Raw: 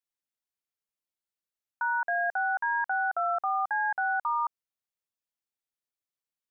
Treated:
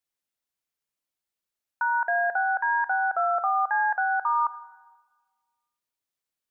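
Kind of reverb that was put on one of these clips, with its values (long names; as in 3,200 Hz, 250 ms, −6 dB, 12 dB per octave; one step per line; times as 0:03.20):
dense smooth reverb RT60 1.4 s, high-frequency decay 0.85×, DRR 14 dB
level +4 dB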